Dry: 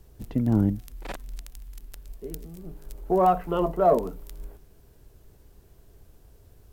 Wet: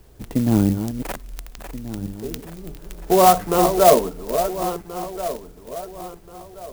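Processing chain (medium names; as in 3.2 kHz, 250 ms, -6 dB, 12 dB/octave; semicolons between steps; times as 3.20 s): backward echo that repeats 690 ms, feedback 54%, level -9 dB; bass shelf 210 Hz -6.5 dB; sampling jitter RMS 0.063 ms; trim +8 dB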